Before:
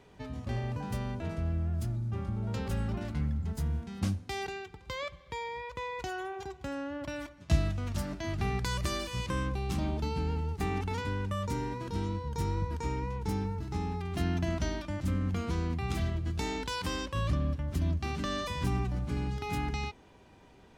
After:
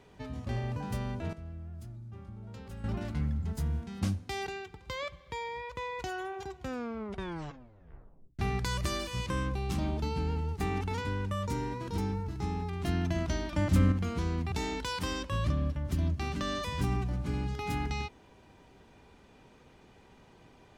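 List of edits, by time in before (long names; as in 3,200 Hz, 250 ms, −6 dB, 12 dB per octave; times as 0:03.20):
0:01.33–0:02.84: clip gain −11.5 dB
0:06.56: tape stop 1.83 s
0:11.98–0:13.30: remove
0:14.85–0:15.24: clip gain +7 dB
0:15.84–0:16.35: remove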